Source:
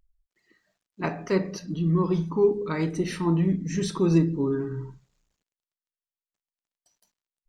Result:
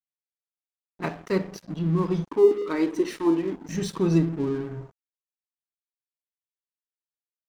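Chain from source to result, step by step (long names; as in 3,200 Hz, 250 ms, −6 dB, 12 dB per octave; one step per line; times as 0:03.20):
0:02.24–0:03.69: low shelf with overshoot 230 Hz −9 dB, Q 3
dead-zone distortion −40.5 dBFS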